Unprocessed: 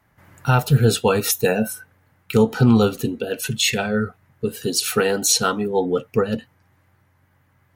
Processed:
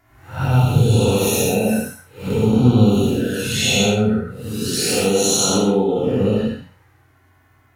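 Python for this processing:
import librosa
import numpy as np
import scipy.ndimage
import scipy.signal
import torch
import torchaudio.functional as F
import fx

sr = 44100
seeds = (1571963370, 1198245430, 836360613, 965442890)

p1 = fx.spec_blur(x, sr, span_ms=232.0)
p2 = fx.over_compress(p1, sr, threshold_db=-26.0, ratio=-0.5)
p3 = p1 + F.gain(torch.from_numpy(p2), -2.0).numpy()
p4 = fx.env_flanger(p3, sr, rest_ms=2.9, full_db=-16.5)
y = fx.rev_gated(p4, sr, seeds[0], gate_ms=170, shape='flat', drr_db=-3.5)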